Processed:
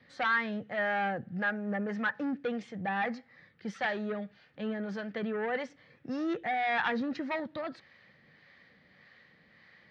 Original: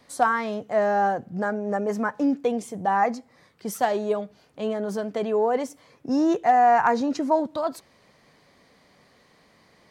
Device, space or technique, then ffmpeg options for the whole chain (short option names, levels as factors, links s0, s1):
guitar amplifier with harmonic tremolo: -filter_complex "[0:a]acrossover=split=590[s0][s1];[s0]aeval=exprs='val(0)*(1-0.5/2+0.5/2*cos(2*PI*1.7*n/s))':c=same[s2];[s1]aeval=exprs='val(0)*(1-0.5/2-0.5/2*cos(2*PI*1.7*n/s))':c=same[s3];[s2][s3]amix=inputs=2:normalize=0,asoftclip=type=tanh:threshold=0.0841,highpass=76,equalizer=f=280:t=q:w=4:g=-6,equalizer=f=410:t=q:w=4:g=-8,equalizer=f=670:t=q:w=4:g=-8,equalizer=f=1000:t=q:w=4:g=-10,equalizer=f=1800:t=q:w=4:g=9,lowpass=f=4000:w=0.5412,lowpass=f=4000:w=1.3066"